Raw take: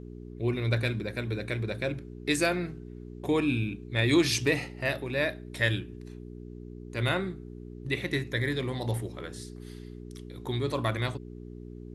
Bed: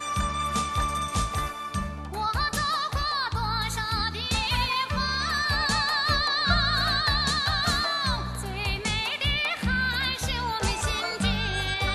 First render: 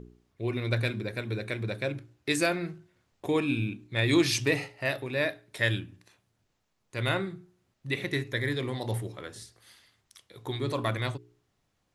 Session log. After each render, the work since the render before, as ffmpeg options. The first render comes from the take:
-af "bandreject=f=60:t=h:w=4,bandreject=f=120:t=h:w=4,bandreject=f=180:t=h:w=4,bandreject=f=240:t=h:w=4,bandreject=f=300:t=h:w=4,bandreject=f=360:t=h:w=4,bandreject=f=420:t=h:w=4"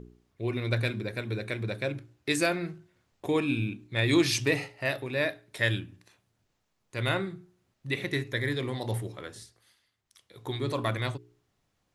-filter_complex "[0:a]asplit=3[s0][s1][s2];[s0]atrim=end=9.76,asetpts=PTS-STARTPTS,afade=t=out:st=9.29:d=0.47:silence=0.266073[s3];[s1]atrim=start=9.76:end=9.98,asetpts=PTS-STARTPTS,volume=0.266[s4];[s2]atrim=start=9.98,asetpts=PTS-STARTPTS,afade=t=in:d=0.47:silence=0.266073[s5];[s3][s4][s5]concat=n=3:v=0:a=1"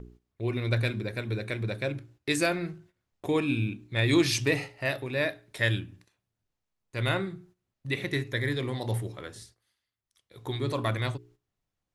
-af "agate=range=0.251:threshold=0.00158:ratio=16:detection=peak,lowshelf=f=63:g=8.5"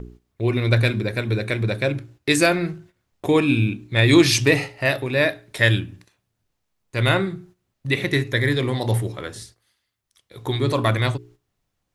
-af "volume=2.82"

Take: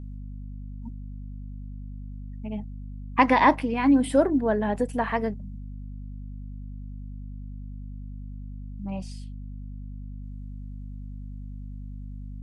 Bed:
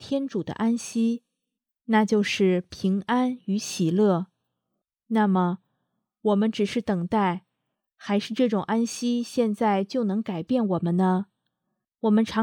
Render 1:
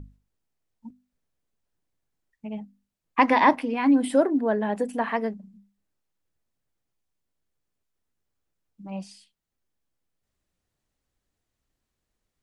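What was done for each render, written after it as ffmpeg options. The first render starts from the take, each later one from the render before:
-af "bandreject=f=50:t=h:w=6,bandreject=f=100:t=h:w=6,bandreject=f=150:t=h:w=6,bandreject=f=200:t=h:w=6,bandreject=f=250:t=h:w=6"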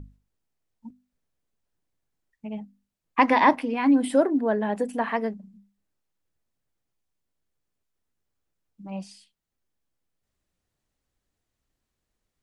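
-af anull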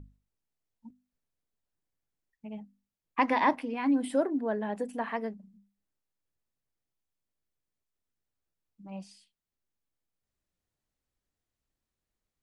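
-af "volume=0.447"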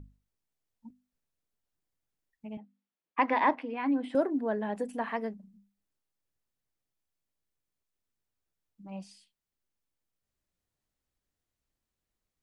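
-filter_complex "[0:a]asettb=1/sr,asplit=3[s0][s1][s2];[s0]atrim=end=2.574[s3];[s1]atrim=start=2.57:end=4.15,asetpts=PTS-STARTPTS,afade=t=in:d=0.004:c=qsin,afade=t=out:st=1.576:d=0.004:c=qsin,highpass=260,lowpass=3100[s4];[s2]atrim=start=4.146[s5];[s3][s4]acrossfade=d=0.004:c1=hsin:c2=qsin[s6];[s6][s5]acrossfade=d=0.004:c1=qsin:c2=hsin"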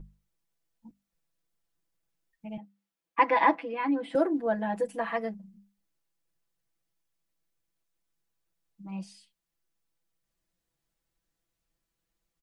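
-af "aecho=1:1:6:1"

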